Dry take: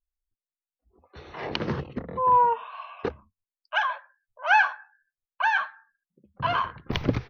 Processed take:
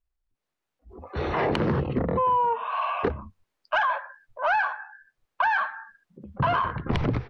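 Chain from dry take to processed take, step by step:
low-pass filter 1,400 Hz 6 dB per octave
automatic gain control gain up to 14 dB
transient designer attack −5 dB, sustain +4 dB
downward compressor 8 to 1, threshold −27 dBFS, peak gain reduction 19.5 dB
soft clipping −17.5 dBFS, distortion −26 dB
level +6 dB

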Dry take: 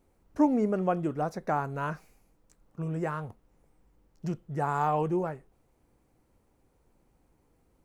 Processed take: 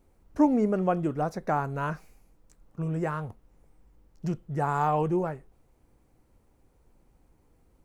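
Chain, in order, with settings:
low-shelf EQ 81 Hz +6.5 dB
level +1.5 dB

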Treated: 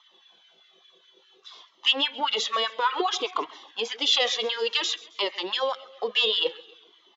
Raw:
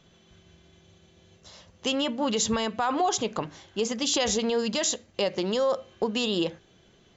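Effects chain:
dynamic equaliser 2,200 Hz, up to +7 dB, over −47 dBFS, Q 1.9
auto-filter high-pass sine 4.9 Hz 390–1,900 Hz
loudspeaker in its box 210–5,400 Hz, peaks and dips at 600 Hz −9 dB, 1,100 Hz +4 dB, 1,600 Hz −4 dB, 2,300 Hz −3 dB, 3,400 Hz +10 dB
repeating echo 134 ms, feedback 52%, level −21 dB
flanger whose copies keep moving one way falling 0.57 Hz
level +3 dB

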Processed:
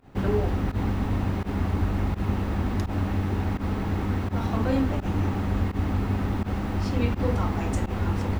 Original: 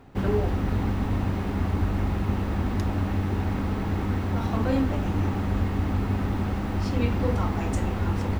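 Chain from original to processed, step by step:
fake sidechain pumping 84 BPM, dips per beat 1, −21 dB, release 80 ms

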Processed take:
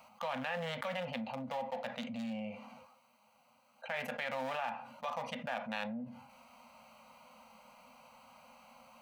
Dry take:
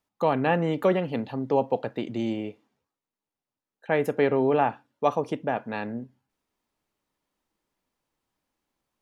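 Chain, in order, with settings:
adaptive Wiener filter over 25 samples
elliptic band-stop filter 240–520 Hz, stop band 40 dB
bass and treble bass +1 dB, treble −11 dB
harmonic and percussive parts rebalanced harmonic +4 dB
first difference
brickwall limiter −37 dBFS, peak gain reduction 8.5 dB
on a send at −8.5 dB: convolution reverb, pre-delay 3 ms
on the sum: envelope flattener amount 70%
level +8 dB

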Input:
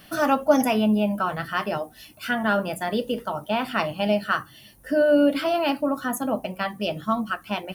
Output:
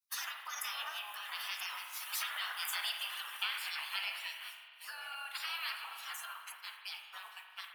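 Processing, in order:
delay that plays each chunk backwards 574 ms, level −13.5 dB
source passing by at 0:02.78, 12 m/s, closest 6.1 metres
downward compressor 4 to 1, threshold −37 dBFS, peak gain reduction 15 dB
gate on every frequency bin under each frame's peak −20 dB weak
downward expander −59 dBFS
high-pass filter 970 Hz 24 dB per octave
spring reverb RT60 1.9 s, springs 38 ms, chirp 50 ms, DRR 4 dB
level +14.5 dB

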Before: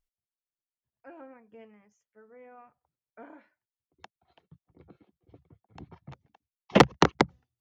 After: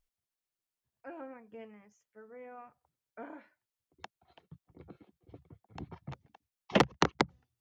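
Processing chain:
downward compressor 2 to 1, threshold −32 dBFS, peak gain reduction 11.5 dB
level +2.5 dB

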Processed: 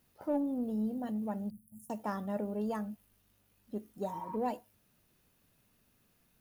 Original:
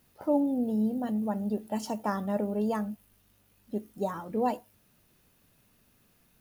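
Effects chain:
0:01.50–0:01.90: elliptic band-stop filter 150–9,700 Hz, stop band 40 dB
0:04.12–0:04.34: healed spectral selection 900–2,400 Hz before
in parallel at −7 dB: soft clipping −25 dBFS, distortion −14 dB
on the sum: level −8.5 dB

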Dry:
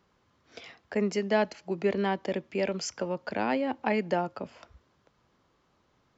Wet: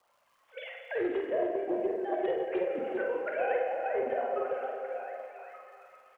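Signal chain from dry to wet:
three sine waves on the formant tracks
treble cut that deepens with the level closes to 1,200 Hz, closed at −26 dBFS
downward compressor 4 to 1, threshold −38 dBFS, peak gain reduction 17.5 dB
surface crackle 240 per second −66 dBFS
frequency shifter −25 Hz
double-tracking delay 48 ms −5 dB
on a send: echo through a band-pass that steps 392 ms, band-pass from 440 Hz, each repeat 0.7 octaves, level −3.5 dB
on the sum: dense smooth reverb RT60 2.5 s, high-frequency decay 0.9×, DRR 1 dB
highs frequency-modulated by the lows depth 0.11 ms
level +4.5 dB

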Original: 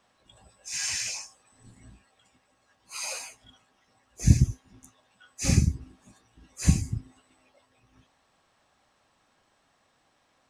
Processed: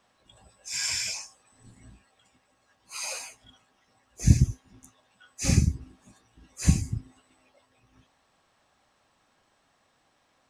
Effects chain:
0:00.70–0:01.14: EQ curve with evenly spaced ripples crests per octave 1.7, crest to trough 10 dB

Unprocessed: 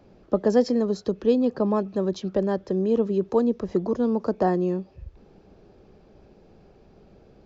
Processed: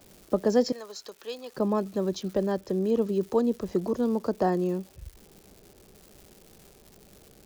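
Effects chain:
0:00.72–0:01.57: high-pass filter 980 Hz 12 dB per octave
surface crackle 360 per second −43 dBFS
high-shelf EQ 4,700 Hz +9 dB
level −3 dB

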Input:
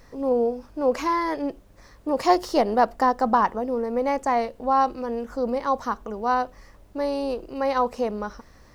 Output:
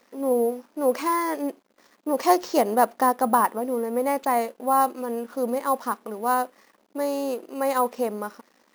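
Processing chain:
dead-zone distortion −52 dBFS
linear-phase brick-wall high-pass 190 Hz
bad sample-rate conversion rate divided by 4×, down none, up hold

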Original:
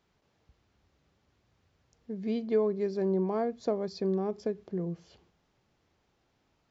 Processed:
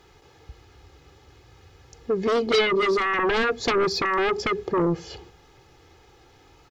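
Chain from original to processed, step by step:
comb filter 2.4 ms, depth 73%
in parallel at −6 dB: sine wavefolder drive 18 dB, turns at −14 dBFS

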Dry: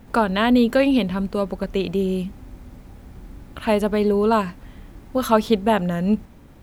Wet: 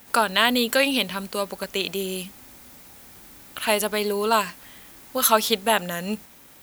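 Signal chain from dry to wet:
spectral tilt +4.5 dB per octave

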